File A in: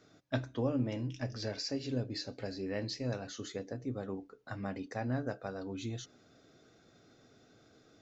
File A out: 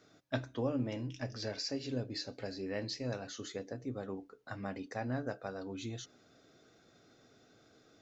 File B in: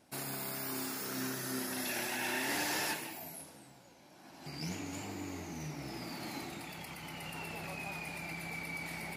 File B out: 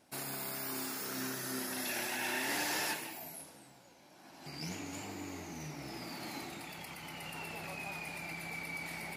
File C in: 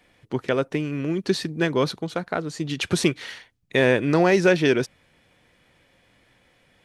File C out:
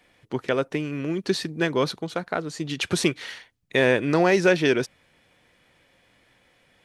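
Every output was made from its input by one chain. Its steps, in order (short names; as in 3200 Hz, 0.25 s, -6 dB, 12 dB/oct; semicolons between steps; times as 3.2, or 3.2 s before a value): low shelf 270 Hz -4 dB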